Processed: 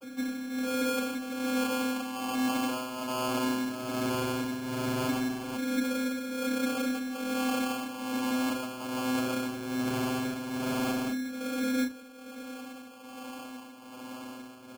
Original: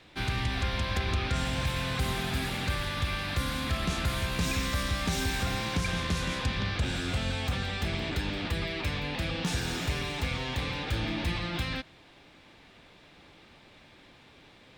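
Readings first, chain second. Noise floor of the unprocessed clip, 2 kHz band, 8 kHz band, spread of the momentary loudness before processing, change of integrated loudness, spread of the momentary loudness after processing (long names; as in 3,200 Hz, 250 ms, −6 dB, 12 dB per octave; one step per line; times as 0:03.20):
−56 dBFS, −4.0 dB, 0.0 dB, 3 LU, −0.5 dB, 14 LU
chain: in parallel at −5.5 dB: comparator with hysteresis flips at −37.5 dBFS
on the sum: auto-filter low-pass saw up 0.18 Hz 370–3,000 Hz
amplitude tremolo 1.2 Hz, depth 86%
channel vocoder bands 32, saw 257 Hz
noise that follows the level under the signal 27 dB
decimation without filtering 23×
double-tracking delay 32 ms −9.5 dB
envelope flattener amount 50%
level −2.5 dB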